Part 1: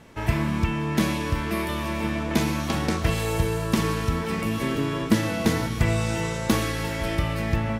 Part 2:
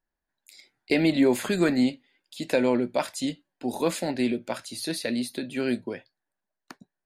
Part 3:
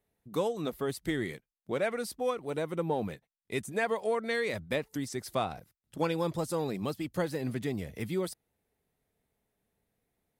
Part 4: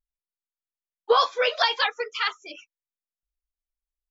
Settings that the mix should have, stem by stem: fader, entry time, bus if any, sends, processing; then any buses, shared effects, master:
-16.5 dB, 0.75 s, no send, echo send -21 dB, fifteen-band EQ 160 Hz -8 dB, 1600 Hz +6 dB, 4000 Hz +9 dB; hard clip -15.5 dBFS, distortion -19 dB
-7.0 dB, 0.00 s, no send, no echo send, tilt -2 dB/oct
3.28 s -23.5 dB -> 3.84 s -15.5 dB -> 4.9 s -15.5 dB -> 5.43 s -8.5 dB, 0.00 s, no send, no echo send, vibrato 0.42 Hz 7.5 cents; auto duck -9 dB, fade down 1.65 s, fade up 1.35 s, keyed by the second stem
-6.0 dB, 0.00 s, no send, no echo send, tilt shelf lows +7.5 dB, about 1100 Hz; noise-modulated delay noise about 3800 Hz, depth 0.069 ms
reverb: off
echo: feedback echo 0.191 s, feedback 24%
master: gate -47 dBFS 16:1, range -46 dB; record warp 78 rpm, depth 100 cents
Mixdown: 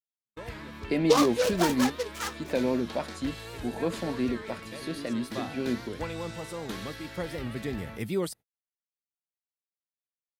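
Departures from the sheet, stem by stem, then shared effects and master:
stem 1: entry 0.75 s -> 0.20 s; stem 3 -23.5 dB -> -12.0 dB

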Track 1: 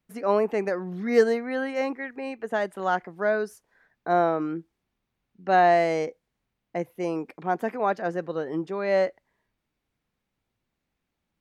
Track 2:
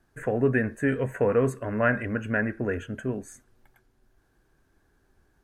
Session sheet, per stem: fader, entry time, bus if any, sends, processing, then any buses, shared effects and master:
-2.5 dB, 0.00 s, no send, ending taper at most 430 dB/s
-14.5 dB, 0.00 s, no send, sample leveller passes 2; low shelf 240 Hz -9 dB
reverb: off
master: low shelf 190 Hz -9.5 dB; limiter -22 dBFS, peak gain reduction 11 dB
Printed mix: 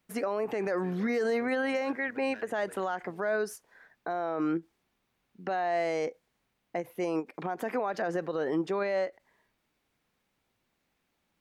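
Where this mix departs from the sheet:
stem 1 -2.5 dB -> +6.0 dB; stem 2 -14.5 dB -> -25.5 dB

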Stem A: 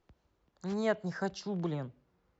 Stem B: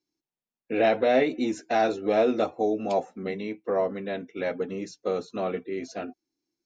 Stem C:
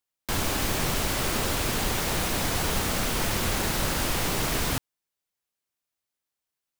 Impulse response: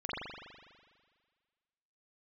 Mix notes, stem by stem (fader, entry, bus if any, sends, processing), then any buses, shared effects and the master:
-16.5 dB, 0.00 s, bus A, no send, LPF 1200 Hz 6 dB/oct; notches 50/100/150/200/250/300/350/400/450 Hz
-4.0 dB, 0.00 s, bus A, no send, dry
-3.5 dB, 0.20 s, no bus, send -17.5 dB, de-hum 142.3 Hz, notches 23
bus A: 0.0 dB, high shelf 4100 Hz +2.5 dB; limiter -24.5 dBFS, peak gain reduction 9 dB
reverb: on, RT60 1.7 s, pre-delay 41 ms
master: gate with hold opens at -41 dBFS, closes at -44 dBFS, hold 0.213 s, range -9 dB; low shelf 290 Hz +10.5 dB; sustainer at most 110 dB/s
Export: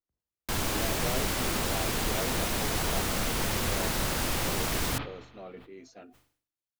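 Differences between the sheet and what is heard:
stem B -4.0 dB -> -15.5 dB; master: missing low shelf 290 Hz +10.5 dB

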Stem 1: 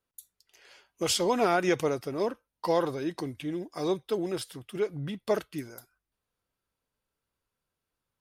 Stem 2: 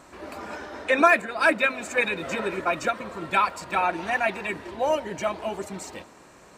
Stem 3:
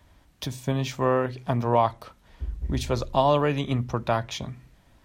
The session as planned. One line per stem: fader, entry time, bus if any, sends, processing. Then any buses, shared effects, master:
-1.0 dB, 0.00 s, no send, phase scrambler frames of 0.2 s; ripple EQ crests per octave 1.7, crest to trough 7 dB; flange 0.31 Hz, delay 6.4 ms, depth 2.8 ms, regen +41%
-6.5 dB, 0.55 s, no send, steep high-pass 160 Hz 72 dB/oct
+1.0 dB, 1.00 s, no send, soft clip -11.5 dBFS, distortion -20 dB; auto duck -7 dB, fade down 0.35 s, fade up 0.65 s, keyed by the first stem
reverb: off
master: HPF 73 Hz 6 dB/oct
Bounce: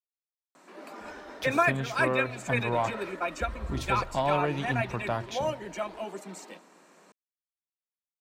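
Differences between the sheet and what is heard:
stem 1: muted; stem 3 +1.0 dB -> -5.5 dB; master: missing HPF 73 Hz 6 dB/oct

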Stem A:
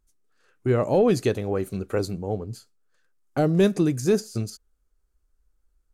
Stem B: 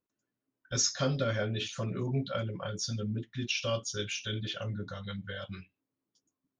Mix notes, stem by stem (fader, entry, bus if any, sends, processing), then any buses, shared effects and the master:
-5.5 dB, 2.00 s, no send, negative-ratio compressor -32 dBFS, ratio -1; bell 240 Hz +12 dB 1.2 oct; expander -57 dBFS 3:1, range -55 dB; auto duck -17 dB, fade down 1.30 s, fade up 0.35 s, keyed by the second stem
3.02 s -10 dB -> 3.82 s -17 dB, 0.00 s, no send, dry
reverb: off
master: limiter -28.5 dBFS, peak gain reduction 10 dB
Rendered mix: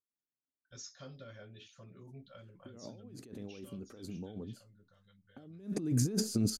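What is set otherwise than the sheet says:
stem B -10.0 dB -> -20.0 dB; master: missing limiter -28.5 dBFS, peak gain reduction 10 dB

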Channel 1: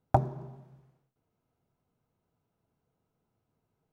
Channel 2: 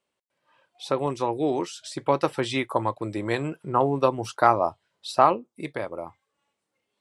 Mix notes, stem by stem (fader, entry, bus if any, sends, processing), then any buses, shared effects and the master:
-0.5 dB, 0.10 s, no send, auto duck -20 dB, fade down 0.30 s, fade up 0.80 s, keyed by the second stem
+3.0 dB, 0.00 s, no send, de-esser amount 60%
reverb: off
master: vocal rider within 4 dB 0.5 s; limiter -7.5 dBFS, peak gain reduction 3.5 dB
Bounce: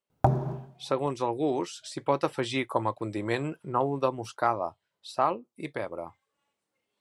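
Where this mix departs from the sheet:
stem 1 -0.5 dB -> +10.0 dB; stem 2 +3.0 dB -> -6.5 dB

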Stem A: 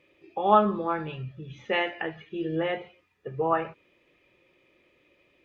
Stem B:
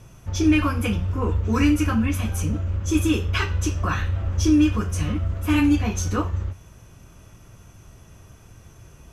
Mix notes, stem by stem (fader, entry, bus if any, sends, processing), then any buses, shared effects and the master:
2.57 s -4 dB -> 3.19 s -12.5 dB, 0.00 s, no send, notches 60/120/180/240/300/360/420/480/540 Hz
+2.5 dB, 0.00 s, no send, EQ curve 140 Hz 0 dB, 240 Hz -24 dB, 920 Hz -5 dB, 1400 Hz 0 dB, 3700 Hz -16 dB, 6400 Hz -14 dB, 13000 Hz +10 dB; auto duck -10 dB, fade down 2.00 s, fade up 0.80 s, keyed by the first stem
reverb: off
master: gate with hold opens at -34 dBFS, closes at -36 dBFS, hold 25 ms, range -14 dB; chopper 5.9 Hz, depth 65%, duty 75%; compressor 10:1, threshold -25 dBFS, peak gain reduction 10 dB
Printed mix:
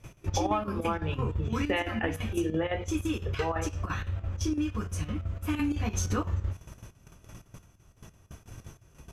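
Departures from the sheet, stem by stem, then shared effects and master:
stem A -4.0 dB -> +8.0 dB; stem B: missing EQ curve 140 Hz 0 dB, 240 Hz -24 dB, 920 Hz -5 dB, 1400 Hz 0 dB, 3700 Hz -16 dB, 6400 Hz -14 dB, 13000 Hz +10 dB

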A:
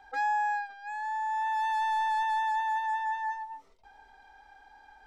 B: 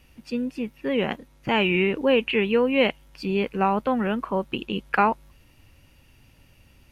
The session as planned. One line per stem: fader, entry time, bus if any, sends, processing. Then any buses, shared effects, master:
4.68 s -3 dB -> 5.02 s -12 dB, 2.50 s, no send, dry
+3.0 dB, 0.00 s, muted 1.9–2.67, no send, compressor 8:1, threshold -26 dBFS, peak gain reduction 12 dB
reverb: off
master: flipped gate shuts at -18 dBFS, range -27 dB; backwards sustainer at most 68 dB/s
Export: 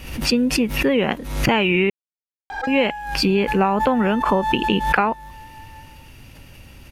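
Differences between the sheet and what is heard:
stem B +3.0 dB -> +11.5 dB; master: missing flipped gate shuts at -18 dBFS, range -27 dB

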